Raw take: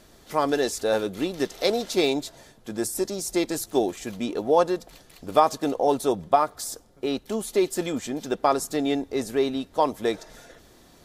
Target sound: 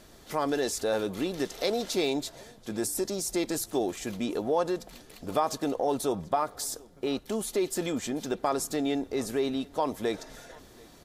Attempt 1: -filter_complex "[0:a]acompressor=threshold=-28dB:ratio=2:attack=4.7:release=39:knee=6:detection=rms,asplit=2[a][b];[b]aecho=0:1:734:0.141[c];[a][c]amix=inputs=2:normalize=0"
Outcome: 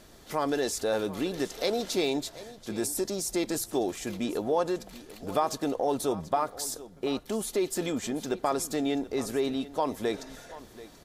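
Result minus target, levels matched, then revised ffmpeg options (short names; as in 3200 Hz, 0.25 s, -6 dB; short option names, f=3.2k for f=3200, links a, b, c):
echo-to-direct +8.5 dB
-filter_complex "[0:a]acompressor=threshold=-28dB:ratio=2:attack=4.7:release=39:knee=6:detection=rms,asplit=2[a][b];[b]aecho=0:1:734:0.0531[c];[a][c]amix=inputs=2:normalize=0"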